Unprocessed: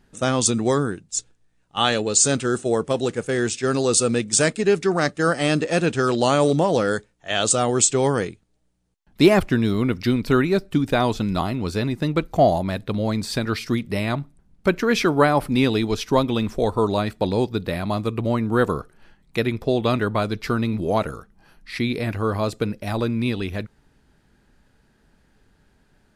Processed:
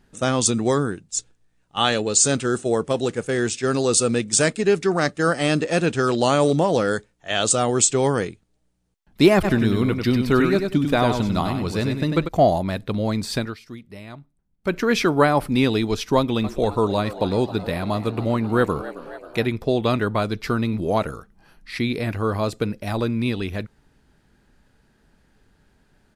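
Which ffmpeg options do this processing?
-filter_complex "[0:a]asplit=3[a][b][c];[a]afade=t=out:st=9.43:d=0.02[d];[b]aecho=1:1:97|194|291:0.531|0.127|0.0306,afade=t=in:st=9.43:d=0.02,afade=t=out:st=12.27:d=0.02[e];[c]afade=t=in:st=12.27:d=0.02[f];[d][e][f]amix=inputs=3:normalize=0,asettb=1/sr,asplit=3[g][h][i];[g]atrim=end=16.174[j];[h]atrim=start=16.17:end=19.47,asetpts=PTS-STARTPTS,afade=t=in:d=0.004:c=qsin,afade=t=out:st=3.296:d=0.004:c=qsin,asplit=8[k][l][m][n][o][p][q][r];[l]adelay=269,afreqshift=90,volume=-15.5dB[s];[m]adelay=538,afreqshift=180,volume=-19.5dB[t];[n]adelay=807,afreqshift=270,volume=-23.5dB[u];[o]adelay=1076,afreqshift=360,volume=-27.5dB[v];[p]adelay=1345,afreqshift=450,volume=-31.6dB[w];[q]adelay=1614,afreqshift=540,volume=-35.6dB[x];[r]adelay=1883,afreqshift=630,volume=-39.6dB[y];[k][s][t][u][v][w][x][y]amix=inputs=8:normalize=0,atrim=end_sample=145530[z];[i]atrim=start=19.466[aa];[j][z]acrossfade=d=0.004:c1=hsin:c2=qsin[ab];[ab][aa]acrossfade=d=0.004:c1=qsin:c2=hsin,asplit=3[ac][ad][ae];[ac]atrim=end=13.55,asetpts=PTS-STARTPTS,afade=t=out:st=13.4:d=0.15:silence=0.177828[af];[ad]atrim=start=13.55:end=14.61,asetpts=PTS-STARTPTS,volume=-15dB[ag];[ae]atrim=start=14.61,asetpts=PTS-STARTPTS,afade=t=in:d=0.15:silence=0.177828[ah];[af][ag][ah]concat=n=3:v=0:a=1"

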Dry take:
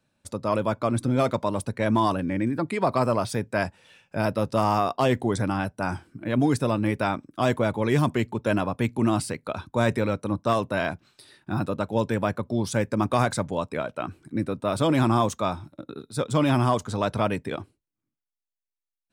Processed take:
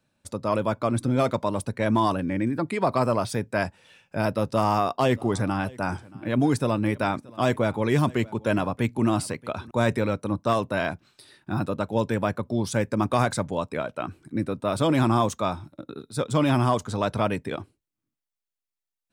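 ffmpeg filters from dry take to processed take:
-filter_complex "[0:a]asettb=1/sr,asplit=3[a][b][c];[a]atrim=end=4.494[d];[b]atrim=start=4.49:end=9.71,asetpts=PTS-STARTPTS,afade=t=in:d=0.004:c=qsin,afade=t=out:st=5.216:d=0.004:c=qsin,aecho=1:1:628:0.0708,atrim=end_sample=230202[e];[c]atrim=start=9.706[f];[d][e]acrossfade=d=0.004:c1=hsin:c2=qsin[g];[g][f]acrossfade=d=0.004:c1=qsin:c2=hsin"

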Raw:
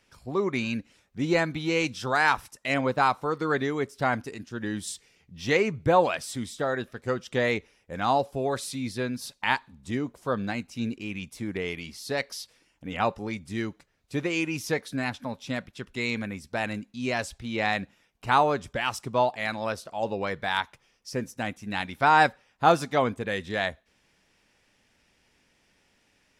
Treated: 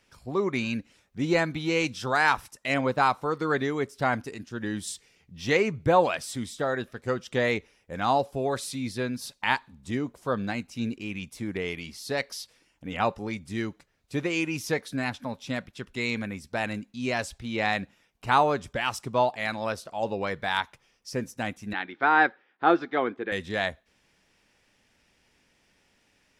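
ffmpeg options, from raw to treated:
-filter_complex "[0:a]asettb=1/sr,asplit=3[a][b][c];[a]atrim=end=21.734[d];[b]atrim=start=21.73:end=23.32,asetpts=PTS-STARTPTS,afade=t=in:d=0.004:c=qsin,afade=t=out:st=1.586:d=0.004:c=qsin,highpass=320,equalizer=f=340:t=q:w=4:g=10,equalizer=f=600:t=q:w=4:g=-7,equalizer=f=980:t=q:w=4:g=-5,equalizer=f=1.6k:t=q:w=4:g=3,equalizer=f=2.7k:t=q:w=4:g=-6,lowpass=f=3.3k:w=0.5412,lowpass=f=3.3k:w=1.3066[e];[c]atrim=start=23.316[f];[d][e]acrossfade=d=0.004:c1=hsin:c2=qsin[g];[g][f]acrossfade=d=0.004:c1=qsin:c2=hsin"

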